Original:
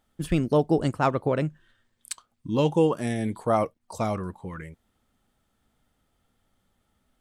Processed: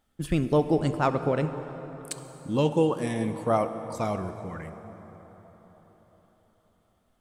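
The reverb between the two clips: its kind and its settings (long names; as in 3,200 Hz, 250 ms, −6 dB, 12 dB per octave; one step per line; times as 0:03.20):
dense smooth reverb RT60 4.8 s, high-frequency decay 0.55×, DRR 9 dB
level −1.5 dB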